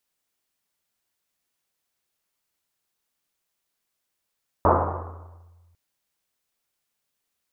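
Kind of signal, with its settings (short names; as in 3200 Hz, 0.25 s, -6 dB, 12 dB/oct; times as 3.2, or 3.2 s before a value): Risset drum, pitch 86 Hz, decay 1.91 s, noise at 770 Hz, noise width 900 Hz, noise 65%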